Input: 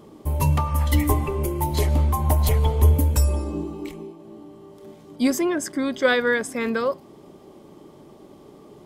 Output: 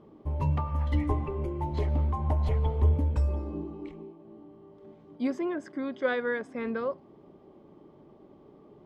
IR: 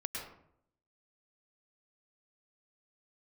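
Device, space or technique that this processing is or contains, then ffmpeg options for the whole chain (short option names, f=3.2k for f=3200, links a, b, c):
phone in a pocket: -filter_complex "[0:a]asettb=1/sr,asplit=3[a][b][c];[a]atrim=end=5.174[d];[b]atrim=start=5.17:end=6.55,asetpts=PTS-STARTPTS,afade=t=in:d=0.004:c=qsin,afade=t=out:st=1.376:d=0.004:c=qsin,highpass=f=180:p=1[e];[c]atrim=start=6.546[f];[d][e]acrossfade=d=0.004:c1=hsin:c2=qsin[g];[g][f]acrossfade=d=0.004:c1=qsin:c2=hsin,lowpass=3.7k,highshelf=f=2.2k:g=-9.5,volume=-7dB"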